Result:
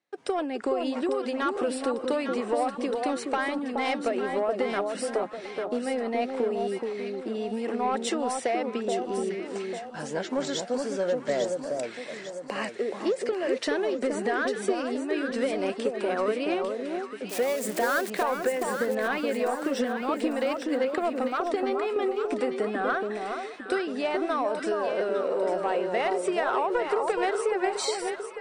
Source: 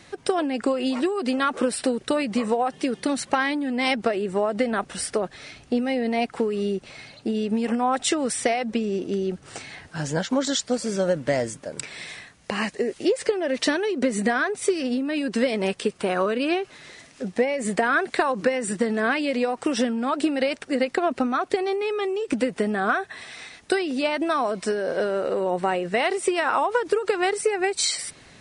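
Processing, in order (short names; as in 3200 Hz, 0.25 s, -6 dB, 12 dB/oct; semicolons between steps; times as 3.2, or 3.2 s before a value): 17.29–18.1 switching spikes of -17 dBFS; gate -45 dBFS, range -29 dB; HPF 380 Hz 12 dB/oct; tilt -2 dB/oct; soft clip -14 dBFS, distortion -19 dB; echo with dull and thin repeats by turns 0.424 s, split 1200 Hz, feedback 66%, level -3.5 dB; gain -3.5 dB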